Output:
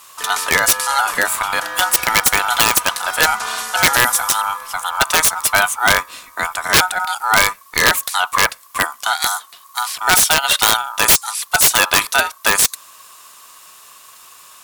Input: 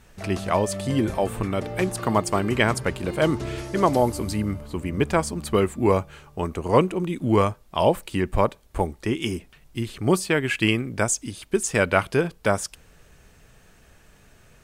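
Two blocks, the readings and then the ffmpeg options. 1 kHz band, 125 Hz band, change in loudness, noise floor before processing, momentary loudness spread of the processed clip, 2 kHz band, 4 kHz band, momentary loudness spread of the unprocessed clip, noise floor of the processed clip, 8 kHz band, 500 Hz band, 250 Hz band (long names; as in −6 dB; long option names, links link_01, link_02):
+9.5 dB, −8.5 dB, +9.0 dB, −55 dBFS, 9 LU, +14.0 dB, +17.0 dB, 8 LU, −45 dBFS, +16.5 dB, −4.0 dB, −9.0 dB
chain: -af "aeval=exprs='val(0)*sin(2*PI*1100*n/s)':channel_layout=same,crystalizer=i=10:c=0,aeval=exprs='(mod(1.78*val(0)+1,2)-1)/1.78':channel_layout=same,volume=2dB"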